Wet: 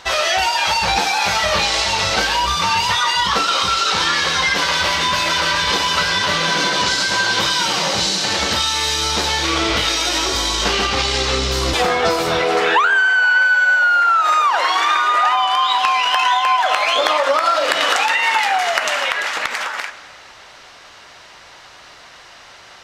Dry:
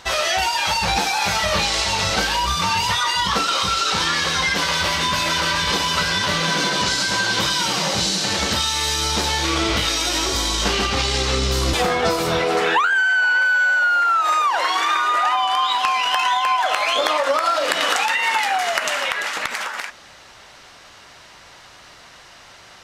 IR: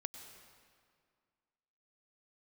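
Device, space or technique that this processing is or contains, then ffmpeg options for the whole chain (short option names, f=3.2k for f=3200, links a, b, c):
filtered reverb send: -filter_complex "[0:a]asplit=2[a][b];[b]highpass=280,lowpass=7.6k[c];[1:a]atrim=start_sample=2205[d];[c][d]afir=irnorm=-1:irlink=0,volume=-1dB[e];[a][e]amix=inputs=2:normalize=0,volume=-1dB"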